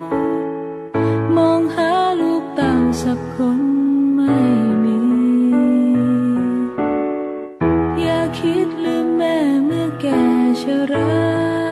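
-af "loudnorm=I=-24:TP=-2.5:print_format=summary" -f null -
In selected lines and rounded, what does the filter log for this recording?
Input Integrated:    -17.0 LUFS
Input True Peak:      -4.8 dBTP
Input LRA:             2.6 LU
Input Threshold:     -27.0 LUFS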